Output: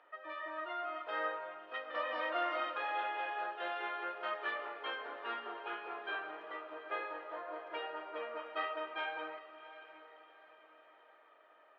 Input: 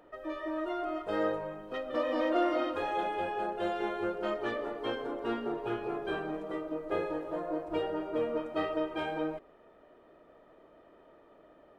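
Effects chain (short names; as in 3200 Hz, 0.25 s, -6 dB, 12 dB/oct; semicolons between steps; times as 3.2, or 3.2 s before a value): HPF 1300 Hz 12 dB/oct; air absorption 340 m; on a send: diffused feedback echo 0.746 s, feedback 41%, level -14 dB; on the sum: gain +5.5 dB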